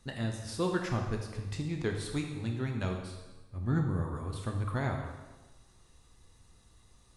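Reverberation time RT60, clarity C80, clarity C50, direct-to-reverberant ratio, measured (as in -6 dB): 1.2 s, 6.5 dB, 4.5 dB, 1.5 dB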